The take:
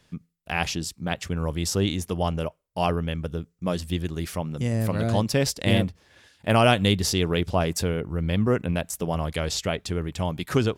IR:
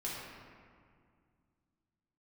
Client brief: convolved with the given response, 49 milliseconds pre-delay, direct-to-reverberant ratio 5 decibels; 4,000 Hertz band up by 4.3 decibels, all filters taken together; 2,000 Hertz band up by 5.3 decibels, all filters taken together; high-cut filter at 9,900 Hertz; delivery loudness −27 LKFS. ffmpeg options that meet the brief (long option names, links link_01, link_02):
-filter_complex "[0:a]lowpass=9900,equalizer=frequency=2000:width_type=o:gain=6,equalizer=frequency=4000:width_type=o:gain=3.5,asplit=2[link_01][link_02];[1:a]atrim=start_sample=2205,adelay=49[link_03];[link_02][link_03]afir=irnorm=-1:irlink=0,volume=-7.5dB[link_04];[link_01][link_04]amix=inputs=2:normalize=0,volume=-4dB"